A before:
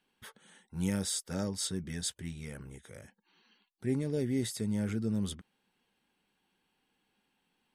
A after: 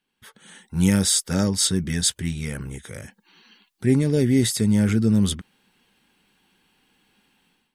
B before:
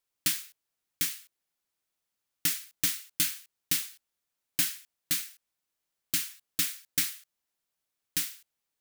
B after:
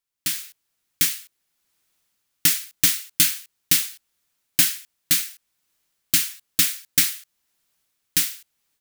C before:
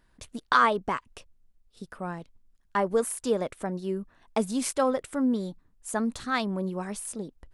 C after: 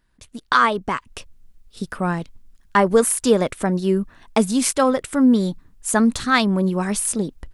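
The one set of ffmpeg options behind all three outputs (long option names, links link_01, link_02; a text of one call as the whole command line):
ffmpeg -i in.wav -af "equalizer=frequency=620:width=0.78:gain=-4.5,dynaudnorm=framelen=250:gausssize=3:maxgain=15.5dB,volume=-1dB" out.wav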